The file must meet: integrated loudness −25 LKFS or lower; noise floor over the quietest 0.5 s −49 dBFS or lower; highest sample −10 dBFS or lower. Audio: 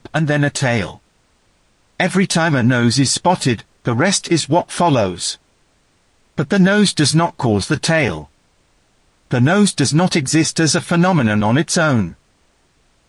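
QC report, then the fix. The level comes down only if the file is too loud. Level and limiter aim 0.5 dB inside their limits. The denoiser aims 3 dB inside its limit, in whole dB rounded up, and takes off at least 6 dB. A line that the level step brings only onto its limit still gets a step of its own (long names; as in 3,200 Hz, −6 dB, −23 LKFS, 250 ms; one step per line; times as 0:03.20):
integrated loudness −16.0 LKFS: out of spec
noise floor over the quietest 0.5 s −58 dBFS: in spec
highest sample −4.0 dBFS: out of spec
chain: level −9.5 dB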